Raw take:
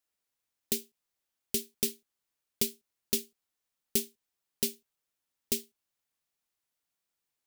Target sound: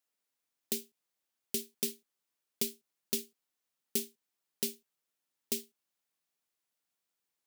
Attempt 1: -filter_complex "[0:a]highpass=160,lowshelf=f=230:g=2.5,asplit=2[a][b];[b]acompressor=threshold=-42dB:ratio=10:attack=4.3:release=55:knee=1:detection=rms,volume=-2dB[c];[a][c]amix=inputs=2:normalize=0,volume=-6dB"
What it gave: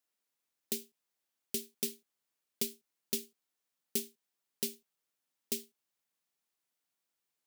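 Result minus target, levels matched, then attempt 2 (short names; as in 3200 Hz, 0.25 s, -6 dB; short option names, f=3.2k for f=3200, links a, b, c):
compressor: peak gain reduction +10 dB
-filter_complex "[0:a]highpass=160,lowshelf=f=230:g=2.5,asplit=2[a][b];[b]acompressor=threshold=-31dB:ratio=10:attack=4.3:release=55:knee=1:detection=rms,volume=-2dB[c];[a][c]amix=inputs=2:normalize=0,volume=-6dB"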